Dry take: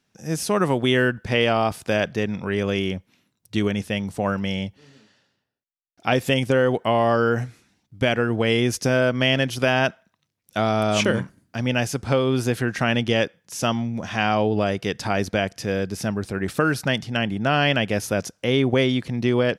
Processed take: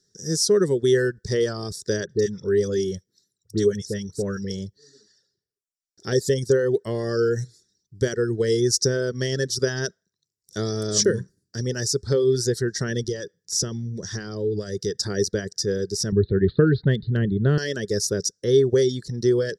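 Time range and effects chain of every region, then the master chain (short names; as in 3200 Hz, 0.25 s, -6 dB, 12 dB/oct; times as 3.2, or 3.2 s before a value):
2.05–4.5 bell 870 Hz -2.5 dB 0.79 oct + dispersion highs, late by 48 ms, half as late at 1600 Hz
13.04–14.97 compressor 2.5:1, threshold -24 dBFS + low shelf 140 Hz +6 dB
16.12–17.58 steep low-pass 4100 Hz 96 dB/oct + de-esser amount 65% + low shelf 250 Hz +12 dB
whole clip: notch 6300 Hz, Q 8; reverb removal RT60 0.72 s; EQ curve 180 Hz 0 dB, 260 Hz -8 dB, 410 Hz +9 dB, 730 Hz -21 dB, 1100 Hz -15 dB, 1800 Hz -3 dB, 2500 Hz -29 dB, 3700 Hz 0 dB, 5800 Hz +15 dB, 12000 Hz -4 dB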